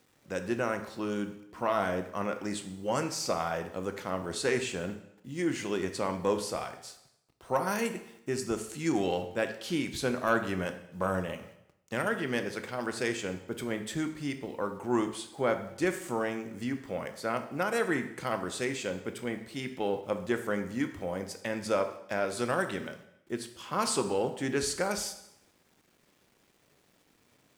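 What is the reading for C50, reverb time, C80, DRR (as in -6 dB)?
10.0 dB, 0.80 s, 13.0 dB, 7.5 dB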